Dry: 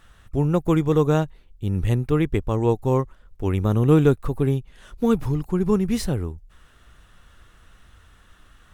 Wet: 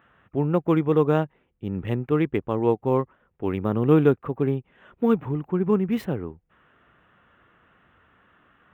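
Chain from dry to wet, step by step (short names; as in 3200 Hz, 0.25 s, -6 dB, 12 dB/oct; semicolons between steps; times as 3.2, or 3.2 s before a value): Wiener smoothing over 9 samples; HPF 170 Hz 12 dB/oct; band shelf 6800 Hz -16 dB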